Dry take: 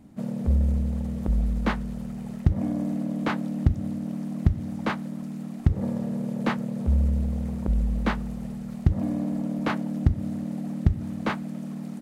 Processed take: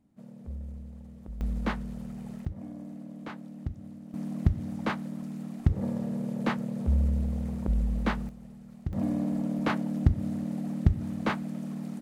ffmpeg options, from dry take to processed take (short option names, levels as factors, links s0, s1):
-af "asetnsamples=n=441:p=0,asendcmd='1.41 volume volume -5dB;2.45 volume volume -14dB;4.14 volume volume -3dB;8.29 volume volume -13dB;8.93 volume volume -1.5dB',volume=0.141"